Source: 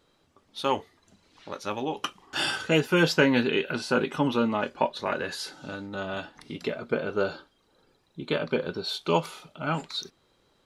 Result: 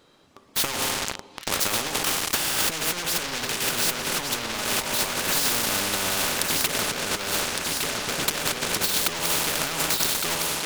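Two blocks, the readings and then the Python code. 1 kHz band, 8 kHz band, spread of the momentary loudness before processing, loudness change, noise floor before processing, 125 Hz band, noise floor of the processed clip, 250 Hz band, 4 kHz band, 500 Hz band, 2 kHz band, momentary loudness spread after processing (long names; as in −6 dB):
+2.0 dB, +21.0 dB, 15 LU, +4.5 dB, −67 dBFS, −3.5 dB, −50 dBFS, −6.0 dB, +9.0 dB, −4.5 dB, +3.5 dB, 4 LU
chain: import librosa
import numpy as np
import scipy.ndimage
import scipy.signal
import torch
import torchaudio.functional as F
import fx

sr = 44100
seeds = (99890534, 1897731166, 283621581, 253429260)

p1 = fx.low_shelf(x, sr, hz=82.0, db=-9.0)
p2 = fx.rev_schroeder(p1, sr, rt60_s=1.2, comb_ms=29, drr_db=8.0)
p3 = fx.leveller(p2, sr, passes=5)
p4 = p3 + fx.echo_feedback(p3, sr, ms=1161, feedback_pct=36, wet_db=-11.0, dry=0)
p5 = fx.over_compress(p4, sr, threshold_db=-17.0, ratio=-0.5)
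y = fx.spectral_comp(p5, sr, ratio=4.0)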